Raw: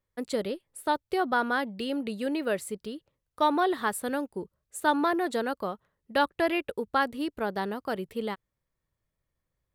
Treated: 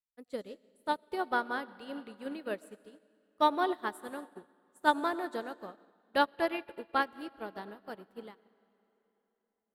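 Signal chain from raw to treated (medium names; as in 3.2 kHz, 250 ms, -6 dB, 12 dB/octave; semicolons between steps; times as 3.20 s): on a send at -7 dB: reverberation RT60 3.8 s, pre-delay 60 ms; on the sum: upward expansion 2.5:1, over -39 dBFS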